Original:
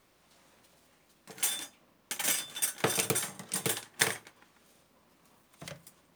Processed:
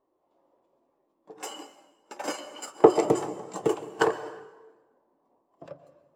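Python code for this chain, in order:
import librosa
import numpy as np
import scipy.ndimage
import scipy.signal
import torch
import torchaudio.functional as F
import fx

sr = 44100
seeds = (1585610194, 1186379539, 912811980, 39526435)

y = fx.high_shelf(x, sr, hz=7500.0, db=-8.0)
y = fx.formant_shift(y, sr, semitones=-3)
y = fx.band_shelf(y, sr, hz=560.0, db=11.5, octaves=2.3)
y = fx.rev_plate(y, sr, seeds[0], rt60_s=1.7, hf_ratio=0.8, predelay_ms=105, drr_db=8.0)
y = fx.spectral_expand(y, sr, expansion=1.5)
y = y * 10.0 ** (5.0 / 20.0)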